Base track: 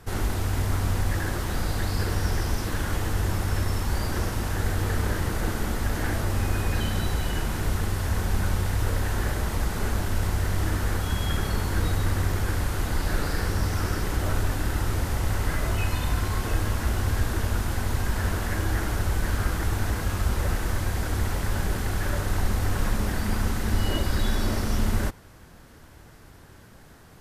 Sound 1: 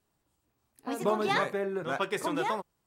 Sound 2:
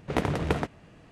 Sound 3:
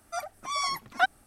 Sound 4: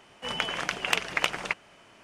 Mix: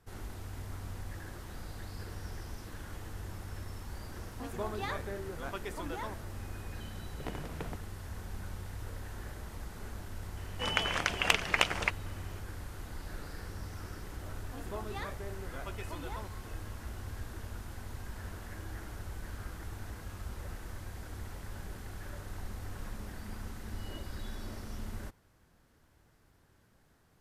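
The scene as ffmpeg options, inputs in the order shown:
ffmpeg -i bed.wav -i cue0.wav -i cue1.wav -i cue2.wav -i cue3.wav -filter_complex "[1:a]asplit=2[link_01][link_02];[0:a]volume=-17dB[link_03];[link_01]atrim=end=2.86,asetpts=PTS-STARTPTS,volume=-10dB,afade=type=in:duration=0.004:curve=hsin,afade=type=out:start_time=2.856:duration=0.004:curve=hsin,adelay=155673S[link_04];[2:a]atrim=end=1.11,asetpts=PTS-STARTPTS,volume=-15dB,afade=type=in:duration=0.004:curve=hsin,afade=type=out:start_time=1.106:duration=0.004:curve=hsin,adelay=7100[link_05];[4:a]atrim=end=2.03,asetpts=PTS-STARTPTS,volume=-1dB,afade=type=in:duration=0.004:curve=hsin,afade=type=out:start_time=2.026:duration=0.004:curve=hsin,adelay=10370[link_06];[link_02]atrim=end=2.86,asetpts=PTS-STARTPTS,volume=-14dB,afade=type=in:duration=0.004:curve=hsin,afade=type=out:start_time=2.856:duration=0.004:curve=hsin,adelay=13660[link_07];[link_03][link_04][link_05][link_06][link_07]amix=inputs=5:normalize=0" out.wav

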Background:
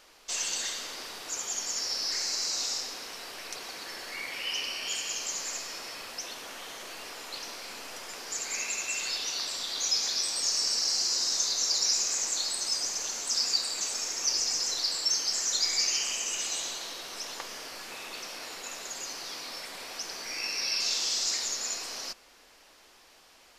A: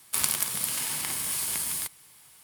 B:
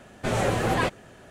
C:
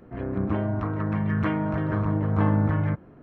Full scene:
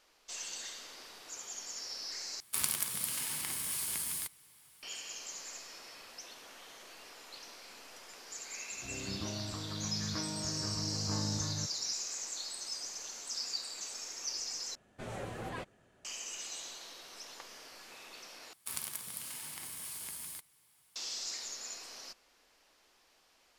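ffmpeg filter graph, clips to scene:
ffmpeg -i bed.wav -i cue0.wav -i cue1.wav -i cue2.wav -filter_complex "[1:a]asplit=2[link_01][link_02];[0:a]volume=-10.5dB[link_03];[link_01]equalizer=frequency=740:width=1.5:gain=-2.5[link_04];[link_03]asplit=4[link_05][link_06][link_07][link_08];[link_05]atrim=end=2.404[link_09];[link_04]atrim=end=2.43,asetpts=PTS-STARTPTS,volume=-6.5dB[link_10];[link_06]atrim=start=4.826:end=14.754[link_11];[2:a]atrim=end=1.3,asetpts=PTS-STARTPTS,volume=-17.5dB[link_12];[link_07]atrim=start=16.046:end=18.534[link_13];[link_02]atrim=end=2.43,asetpts=PTS-STARTPTS,volume=-13.5dB[link_14];[link_08]atrim=start=20.956[link_15];[3:a]atrim=end=3.22,asetpts=PTS-STARTPTS,volume=-15dB,afade=type=in:duration=0.004:curve=hsin,afade=type=out:start_time=3.216:duration=0.004:curve=hsin,adelay=8710[link_16];[link_09][link_10]acrossfade=duration=0.004:curve1=hsin:curve2=hsin[link_17];[link_17][link_11]acrossfade=duration=0.004:curve1=hsin:curve2=hsin[link_18];[link_18][link_12]acrossfade=duration=0.004:curve1=hsin:curve2=hsin[link_19];[link_19][link_13]acrossfade=duration=0.004:curve1=hsin:curve2=hsin[link_20];[link_20][link_14]acrossfade=duration=0.004:curve1=hsin:curve2=hsin[link_21];[link_21][link_15]acrossfade=duration=0.004:curve1=hsin:curve2=hsin[link_22];[link_22][link_16]amix=inputs=2:normalize=0" out.wav

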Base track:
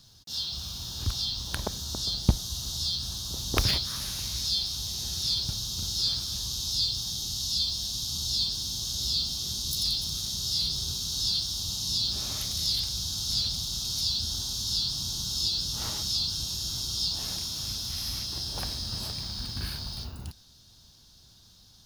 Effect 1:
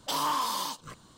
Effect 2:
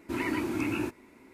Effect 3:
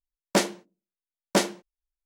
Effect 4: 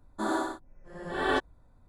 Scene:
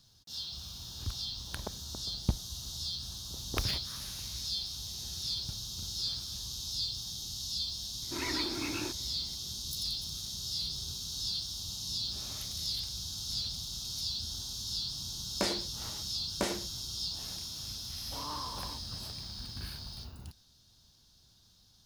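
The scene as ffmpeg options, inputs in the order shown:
ffmpeg -i bed.wav -i cue0.wav -i cue1.wav -i cue2.wav -filter_complex "[0:a]volume=-7.5dB[link_01];[2:a]equalizer=frequency=170:width_type=o:width=1.6:gain=-8[link_02];[3:a]acompressor=threshold=-25dB:ratio=6:attack=3.2:release=140:knee=1:detection=peak[link_03];[1:a]tiltshelf=frequency=1400:gain=6.5[link_04];[link_02]atrim=end=1.33,asetpts=PTS-STARTPTS,volume=-4dB,afade=type=in:duration=0.004:curve=hsin,afade=type=out:start_time=1.326:duration=0.004:curve=hsin,adelay=353682S[link_05];[link_03]atrim=end=2.05,asetpts=PTS-STARTPTS,volume=-2dB,afade=type=in:duration=0.004:curve=hsin,afade=type=out:start_time=2.046:duration=0.004:curve=hsin,adelay=15060[link_06];[link_04]atrim=end=1.17,asetpts=PTS-STARTPTS,volume=-14.5dB,afade=type=in:duration=0.004:curve=hsin,afade=type=out:start_time=1.166:duration=0.004:curve=hsin,adelay=18040[link_07];[link_01][link_05][link_06][link_07]amix=inputs=4:normalize=0" out.wav

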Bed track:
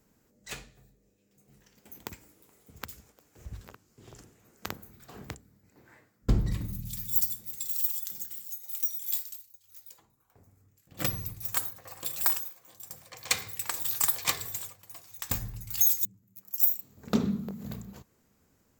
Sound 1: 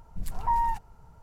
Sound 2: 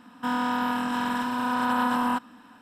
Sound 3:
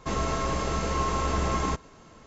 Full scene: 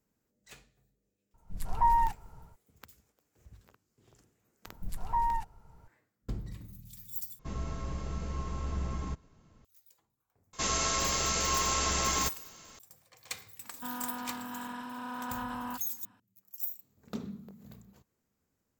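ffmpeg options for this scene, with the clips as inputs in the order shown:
ffmpeg -i bed.wav -i cue0.wav -i cue1.wav -i cue2.wav -filter_complex "[1:a]asplit=2[link_01][link_02];[3:a]asplit=2[link_03][link_04];[0:a]volume=-12.5dB[link_05];[link_01]dynaudnorm=framelen=100:gausssize=5:maxgain=15dB[link_06];[link_03]bass=frequency=250:gain=12,treble=frequency=4000:gain=1[link_07];[link_04]crystalizer=i=9.5:c=0[link_08];[link_05]asplit=2[link_09][link_10];[link_09]atrim=end=7.394[link_11];[link_07]atrim=end=2.26,asetpts=PTS-STARTPTS,volume=-16.5dB[link_12];[link_10]atrim=start=9.646[link_13];[link_06]atrim=end=1.22,asetpts=PTS-STARTPTS,volume=-12.5dB,afade=type=in:duration=0.004:curve=hsin,afade=type=out:start_time=1.216:duration=0.004:curve=hsin,adelay=1340[link_14];[link_02]atrim=end=1.22,asetpts=PTS-STARTPTS,volume=-4dB,afade=type=in:duration=0.004:curve=hsin,afade=type=out:start_time=1.216:duration=0.004:curve=hsin,adelay=4660[link_15];[link_08]atrim=end=2.26,asetpts=PTS-STARTPTS,volume=-8.5dB,afade=type=in:duration=0.004:curve=hsin,afade=type=out:start_time=2.256:duration=0.004:curve=hsin,adelay=10530[link_16];[2:a]atrim=end=2.61,asetpts=PTS-STARTPTS,volume=-13.5dB,afade=type=in:duration=0.004:curve=hsin,afade=type=out:start_time=2.606:duration=0.004:curve=hsin,adelay=13590[link_17];[link_11][link_12]acrossfade=duration=0.004:curve1=hsin:curve2=hsin[link_18];[link_18][link_13]acrossfade=duration=0.004:curve1=hsin:curve2=hsin[link_19];[link_19][link_14][link_15][link_16][link_17]amix=inputs=5:normalize=0" out.wav

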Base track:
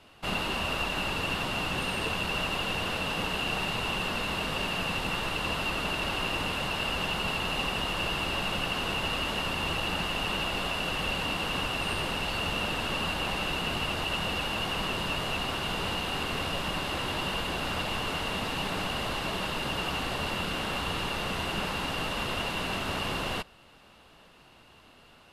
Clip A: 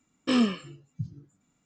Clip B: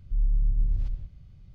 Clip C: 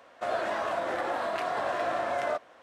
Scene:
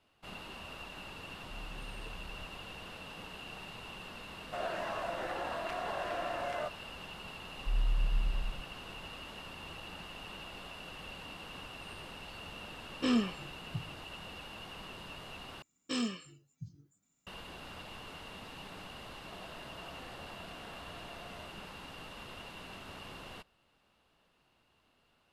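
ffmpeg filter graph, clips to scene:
ffmpeg -i bed.wav -i cue0.wav -i cue1.wav -i cue2.wav -filter_complex "[2:a]asplit=2[link_01][link_02];[3:a]asplit=2[link_03][link_04];[1:a]asplit=2[link_05][link_06];[0:a]volume=-16dB[link_07];[link_01]acompressor=threshold=-35dB:ratio=6:attack=3.2:release=140:knee=1:detection=peak[link_08];[link_02]aecho=1:1:5.7:0.99[link_09];[link_06]aemphasis=mode=production:type=75kf[link_10];[link_04]acompressor=threshold=-32dB:ratio=6:attack=3.2:release=140:knee=1:detection=peak[link_11];[link_07]asplit=2[link_12][link_13];[link_12]atrim=end=15.624[link_14];[link_10]atrim=end=1.65,asetpts=PTS-STARTPTS,volume=-12dB[link_15];[link_13]atrim=start=17.266[link_16];[link_08]atrim=end=1.54,asetpts=PTS-STARTPTS,volume=-10dB,afade=type=in:duration=0.004:curve=hsin,afade=type=out:start_time=1.536:duration=0.004:curve=hsin,adelay=1400[link_17];[link_03]atrim=end=2.62,asetpts=PTS-STARTPTS,volume=-7.5dB,afade=type=in:duration=0.004:curve=hsin,afade=type=out:start_time=2.616:duration=0.004:curve=hsin,adelay=4310[link_18];[link_09]atrim=end=1.54,asetpts=PTS-STARTPTS,volume=-10.5dB,afade=type=in:duration=0.004:curve=hsin,afade=type=out:start_time=1.536:duration=0.004:curve=hsin,adelay=7550[link_19];[link_05]atrim=end=1.65,asetpts=PTS-STARTPTS,volume=-6dB,afade=type=in:duration=0.004:curve=hsin,afade=type=out:start_time=1.646:duration=0.004:curve=hsin,adelay=12750[link_20];[link_11]atrim=end=2.62,asetpts=PTS-STARTPTS,volume=-17.5dB,afade=type=in:duration=0.004:curve=hsin,afade=type=out:start_time=2.616:duration=0.004:curve=hsin,adelay=19100[link_21];[link_14][link_15]acrossfade=duration=0.004:curve1=hsin:curve2=hsin[link_22];[link_22][link_16]acrossfade=duration=0.004:curve1=hsin:curve2=hsin[link_23];[link_23][link_17][link_18][link_19][link_20][link_21]amix=inputs=6:normalize=0" out.wav

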